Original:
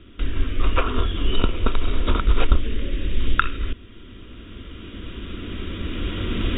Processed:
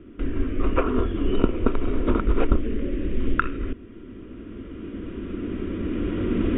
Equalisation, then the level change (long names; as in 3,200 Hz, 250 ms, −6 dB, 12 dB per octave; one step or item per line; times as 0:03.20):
low-pass filter 2,500 Hz 24 dB per octave
parametric band 310 Hz +11.5 dB 2.1 octaves
−5.0 dB